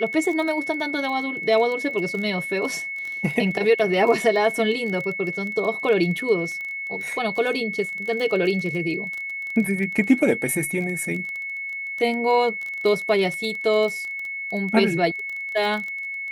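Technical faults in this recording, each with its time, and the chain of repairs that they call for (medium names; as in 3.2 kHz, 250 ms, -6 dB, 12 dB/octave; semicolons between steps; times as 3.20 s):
crackle 22 per s -28 dBFS
whine 2.2 kHz -28 dBFS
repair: de-click; band-stop 2.2 kHz, Q 30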